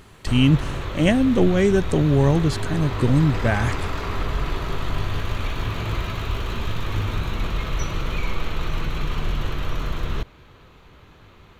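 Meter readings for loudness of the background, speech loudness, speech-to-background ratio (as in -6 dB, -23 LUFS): -28.5 LUFS, -20.0 LUFS, 8.5 dB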